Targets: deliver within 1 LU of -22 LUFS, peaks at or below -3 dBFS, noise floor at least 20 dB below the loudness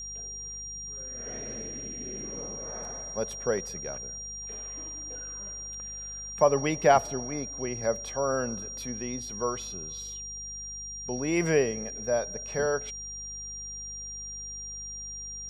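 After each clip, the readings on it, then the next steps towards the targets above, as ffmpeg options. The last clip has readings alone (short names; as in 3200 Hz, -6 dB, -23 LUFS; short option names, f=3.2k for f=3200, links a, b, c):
hum 50 Hz; harmonics up to 200 Hz; hum level -46 dBFS; steady tone 5700 Hz; tone level -37 dBFS; loudness -31.5 LUFS; peak -7.5 dBFS; loudness target -22.0 LUFS
-> -af "bandreject=f=50:t=h:w=4,bandreject=f=100:t=h:w=4,bandreject=f=150:t=h:w=4,bandreject=f=200:t=h:w=4"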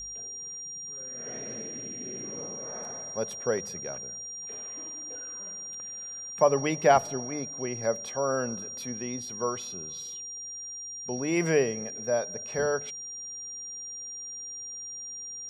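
hum none; steady tone 5700 Hz; tone level -37 dBFS
-> -af "bandreject=f=5.7k:w=30"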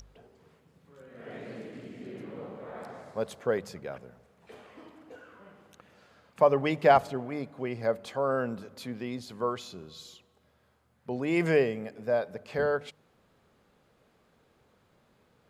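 steady tone none; loudness -30.0 LUFS; peak -8.0 dBFS; loudness target -22.0 LUFS
-> -af "volume=8dB,alimiter=limit=-3dB:level=0:latency=1"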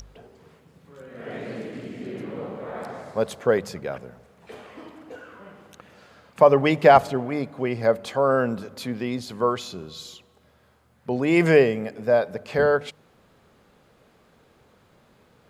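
loudness -22.5 LUFS; peak -3.0 dBFS; noise floor -60 dBFS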